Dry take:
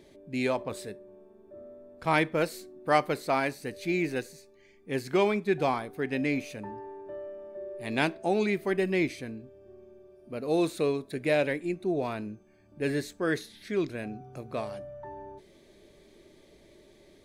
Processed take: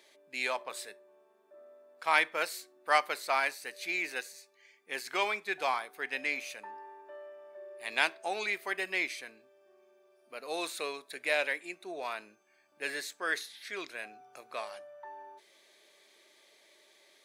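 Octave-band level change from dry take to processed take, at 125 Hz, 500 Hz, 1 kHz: under -25 dB, -9.5 dB, -1.5 dB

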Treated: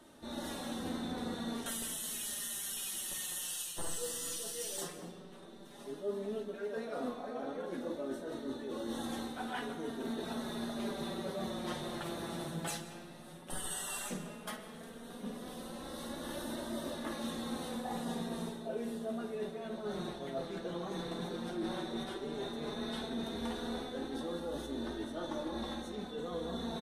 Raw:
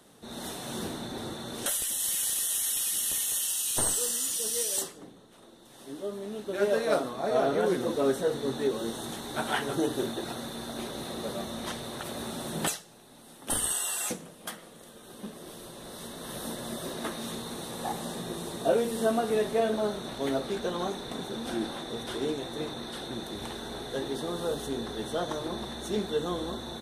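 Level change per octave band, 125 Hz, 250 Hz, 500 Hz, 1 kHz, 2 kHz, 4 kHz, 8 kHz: -5.5 dB, -4.5 dB, -10.0 dB, -7.5 dB, -7.5 dB, -7.5 dB, -11.0 dB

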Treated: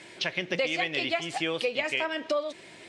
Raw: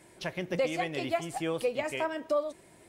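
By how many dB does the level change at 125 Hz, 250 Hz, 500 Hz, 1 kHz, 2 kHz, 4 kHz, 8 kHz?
-2.5 dB, 0.0 dB, 0.0 dB, +0.5 dB, +8.0 dB, +10.5 dB, +1.5 dB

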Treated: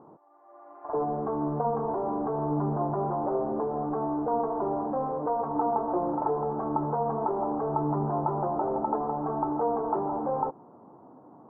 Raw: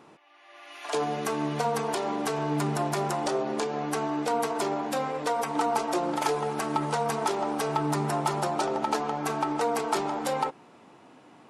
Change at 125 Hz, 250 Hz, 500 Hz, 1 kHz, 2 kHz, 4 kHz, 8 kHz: +0.5 dB, +0.5 dB, 0.0 dB, -0.5 dB, under -15 dB, under -40 dB, under -40 dB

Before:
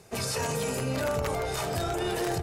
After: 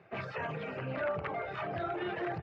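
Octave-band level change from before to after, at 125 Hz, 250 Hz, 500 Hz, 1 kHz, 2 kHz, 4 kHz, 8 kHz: -9.5 dB, -7.5 dB, -6.5 dB, -4.5 dB, -3.0 dB, -15.0 dB, under -40 dB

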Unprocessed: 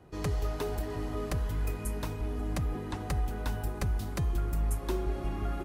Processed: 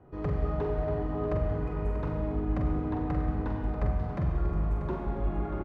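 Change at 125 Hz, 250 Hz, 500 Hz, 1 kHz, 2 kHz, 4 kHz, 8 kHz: +2.5 dB, +5.0 dB, +4.5 dB, +2.5 dB, -2.5 dB, under -10 dB, under -25 dB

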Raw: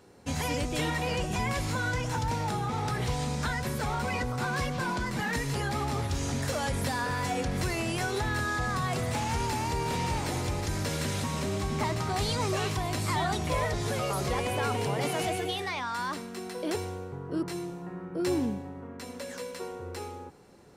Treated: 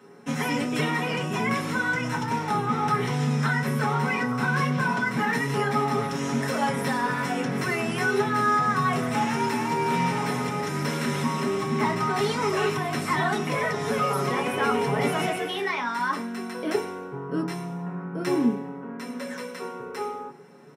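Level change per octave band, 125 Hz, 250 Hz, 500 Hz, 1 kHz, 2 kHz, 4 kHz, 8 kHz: +1.5 dB, +6.5 dB, +5.0 dB, +6.5 dB, +6.5 dB, +1.0 dB, -1.5 dB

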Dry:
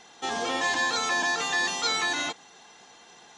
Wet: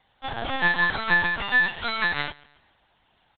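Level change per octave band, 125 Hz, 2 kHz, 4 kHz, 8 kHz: +13.0 dB, +5.5 dB, -3.5 dB, under -40 dB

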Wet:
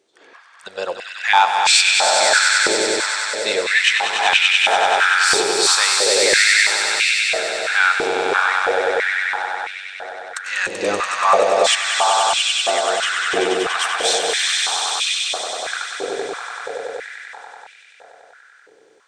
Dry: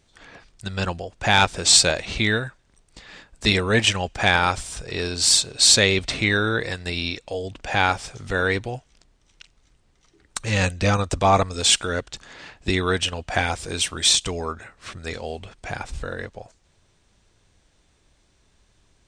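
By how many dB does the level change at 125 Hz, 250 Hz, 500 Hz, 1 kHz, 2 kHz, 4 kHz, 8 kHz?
under -20 dB, -4.5 dB, +6.0 dB, +8.0 dB, +8.5 dB, +4.5 dB, +3.0 dB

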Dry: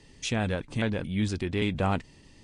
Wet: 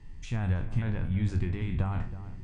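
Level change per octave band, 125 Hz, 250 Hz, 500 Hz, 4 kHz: +2.5 dB, -5.0 dB, -11.0 dB, under -10 dB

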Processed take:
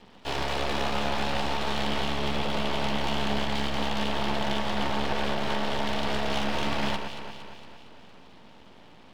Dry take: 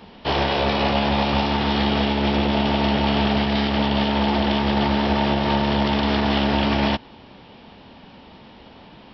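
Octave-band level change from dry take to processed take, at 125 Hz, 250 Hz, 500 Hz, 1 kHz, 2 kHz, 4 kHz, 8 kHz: -11.0 dB, -12.0 dB, -8.0 dB, -7.5 dB, -6.0 dB, -6.5 dB, no reading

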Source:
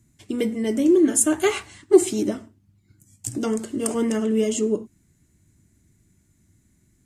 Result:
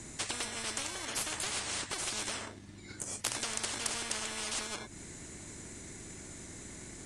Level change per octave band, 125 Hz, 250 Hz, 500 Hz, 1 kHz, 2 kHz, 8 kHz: -10.0 dB, -25.5 dB, -24.5 dB, -6.5 dB, -3.5 dB, -7.0 dB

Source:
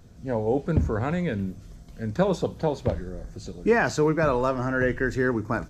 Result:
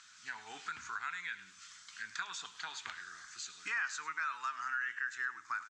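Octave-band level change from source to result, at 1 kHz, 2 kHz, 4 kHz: -10.5 dB, -6.0 dB, -2.5 dB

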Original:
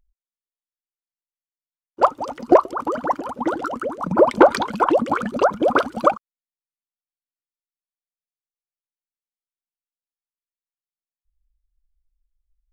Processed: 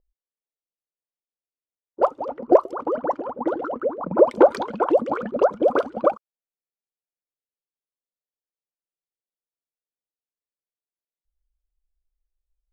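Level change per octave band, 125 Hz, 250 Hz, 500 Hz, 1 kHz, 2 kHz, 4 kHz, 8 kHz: -6.5 dB, -3.5 dB, 0.0 dB, -5.5 dB, -8.5 dB, under -10 dB, no reading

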